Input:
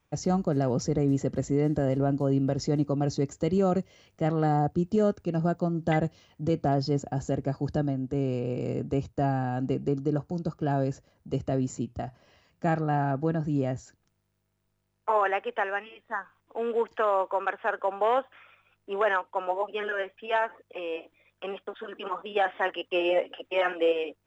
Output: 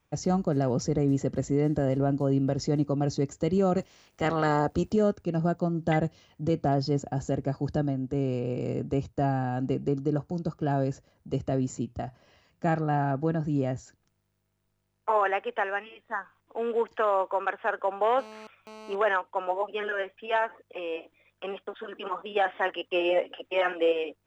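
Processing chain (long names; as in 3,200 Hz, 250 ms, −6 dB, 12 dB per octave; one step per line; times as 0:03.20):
0:03.77–0:04.92: ceiling on every frequency bin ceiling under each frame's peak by 16 dB
0:18.19–0:18.95: phone interference −45 dBFS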